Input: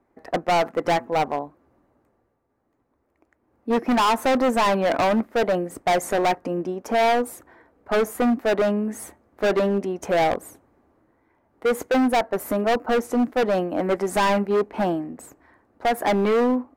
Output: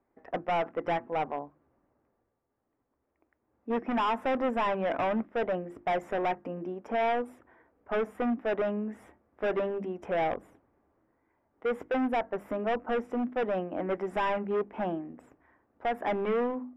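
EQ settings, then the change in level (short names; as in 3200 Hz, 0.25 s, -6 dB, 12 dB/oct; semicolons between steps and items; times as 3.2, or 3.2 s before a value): polynomial smoothing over 25 samples; notches 50/100/150/200/250/300/350 Hz; -8.5 dB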